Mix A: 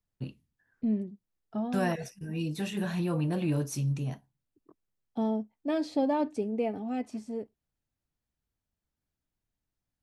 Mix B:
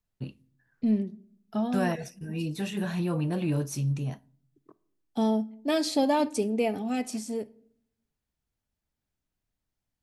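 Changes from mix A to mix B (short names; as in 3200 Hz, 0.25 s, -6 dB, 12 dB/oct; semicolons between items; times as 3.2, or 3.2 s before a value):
second voice: remove LPF 1200 Hz 6 dB/oct; reverb: on, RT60 0.65 s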